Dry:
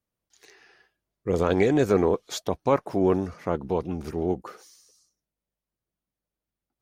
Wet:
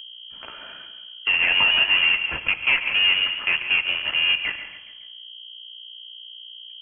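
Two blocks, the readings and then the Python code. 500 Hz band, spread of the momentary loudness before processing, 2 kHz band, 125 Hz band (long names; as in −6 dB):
−19.0 dB, 10 LU, +20.5 dB, below −15 dB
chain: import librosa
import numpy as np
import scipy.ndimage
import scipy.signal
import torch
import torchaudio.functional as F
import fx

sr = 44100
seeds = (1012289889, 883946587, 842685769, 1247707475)

p1 = scipy.signal.sosfilt(scipy.signal.butter(2, 480.0, 'highpass', fs=sr, output='sos'), x)
p2 = fx.peak_eq(p1, sr, hz=720.0, db=2.0, octaves=0.37)
p3 = fx.notch(p2, sr, hz=1100.0, q=23.0)
p4 = p3 + 0.3 * np.pad(p3, (int(2.7 * sr / 1000.0), 0))[:len(p3)]
p5 = fx.quant_companded(p4, sr, bits=2)
p6 = p4 + F.gain(torch.from_numpy(p5), -6.0).numpy()
p7 = fx.add_hum(p6, sr, base_hz=60, snr_db=28)
p8 = 10.0 ** (-18.0 / 20.0) * np.tanh(p7 / 10.0 ** (-18.0 / 20.0))
p9 = p8 + fx.echo_feedback(p8, sr, ms=139, feedback_pct=37, wet_db=-14, dry=0)
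p10 = fx.rev_gated(p9, sr, seeds[0], gate_ms=240, shape='flat', drr_db=11.0)
p11 = fx.freq_invert(p10, sr, carrier_hz=3200)
p12 = fx.band_squash(p11, sr, depth_pct=40)
y = F.gain(torch.from_numpy(p12), 5.5).numpy()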